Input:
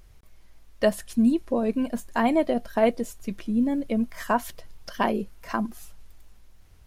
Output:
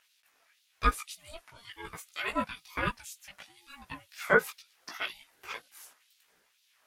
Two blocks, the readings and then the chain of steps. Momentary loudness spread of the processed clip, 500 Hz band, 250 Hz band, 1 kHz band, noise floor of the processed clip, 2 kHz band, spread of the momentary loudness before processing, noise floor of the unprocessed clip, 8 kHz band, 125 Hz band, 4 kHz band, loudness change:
24 LU, -10.0 dB, -19.5 dB, -6.0 dB, -71 dBFS, +2.5 dB, 11 LU, -52 dBFS, -3.0 dB, -4.5 dB, -0.5 dB, -7.0 dB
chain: LFO high-pass sine 2 Hz 950–3600 Hz; chorus voices 6, 1 Hz, delay 17 ms, depth 3 ms; ring modulator with a swept carrier 460 Hz, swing 30%, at 1.1 Hz; gain +2.5 dB

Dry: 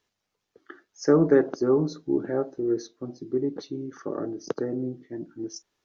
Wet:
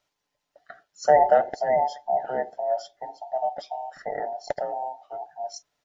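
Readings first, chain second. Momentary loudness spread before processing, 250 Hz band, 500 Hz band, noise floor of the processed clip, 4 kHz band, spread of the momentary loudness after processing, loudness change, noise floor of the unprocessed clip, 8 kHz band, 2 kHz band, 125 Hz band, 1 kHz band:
16 LU, -20.0 dB, +0.5 dB, -81 dBFS, +1.0 dB, 17 LU, +0.5 dB, -82 dBFS, n/a, +3.5 dB, -15.0 dB, +17.0 dB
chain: band inversion scrambler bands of 1000 Hz; comb 6.9 ms, depth 30%

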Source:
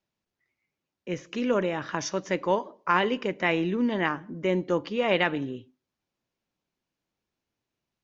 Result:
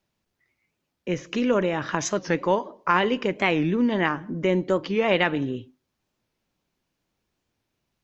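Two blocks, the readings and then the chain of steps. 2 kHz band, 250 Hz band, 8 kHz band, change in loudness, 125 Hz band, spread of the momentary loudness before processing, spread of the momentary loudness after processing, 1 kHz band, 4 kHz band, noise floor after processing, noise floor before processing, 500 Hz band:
+2.5 dB, +4.0 dB, n/a, +3.0 dB, +5.0 dB, 10 LU, 8 LU, +2.5 dB, +2.5 dB, -79 dBFS, under -85 dBFS, +3.0 dB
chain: low shelf 91 Hz +6 dB; in parallel at +1 dB: compressor, threshold -31 dBFS, peak gain reduction 13 dB; on the sum: record warp 45 rpm, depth 160 cents

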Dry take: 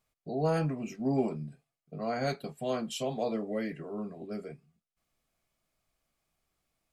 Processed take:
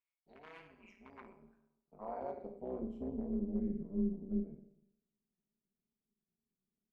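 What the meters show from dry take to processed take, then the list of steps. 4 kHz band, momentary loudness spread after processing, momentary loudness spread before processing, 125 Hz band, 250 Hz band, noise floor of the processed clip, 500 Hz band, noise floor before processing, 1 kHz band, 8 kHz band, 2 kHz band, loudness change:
under -25 dB, 21 LU, 12 LU, -12.0 dB, -4.5 dB, under -85 dBFS, -11.5 dB, under -85 dBFS, -12.0 dB, under -30 dB, under -15 dB, -6.0 dB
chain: in parallel at -10 dB: backlash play -30 dBFS; on the sum: dynamic EQ 400 Hz, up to +4 dB, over -42 dBFS, Q 1.6; compressor 2:1, threshold -31 dBFS, peak gain reduction 7.5 dB; Schroeder reverb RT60 0.76 s, combs from 31 ms, DRR 5.5 dB; wavefolder -24.5 dBFS; band-pass sweep 2600 Hz -> 200 Hz, 0.99–3.36; bell 4500 Hz -7.5 dB 2.2 oct; small resonant body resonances 210/980/2200 Hz, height 10 dB; AM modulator 190 Hz, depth 60%; gain -3 dB

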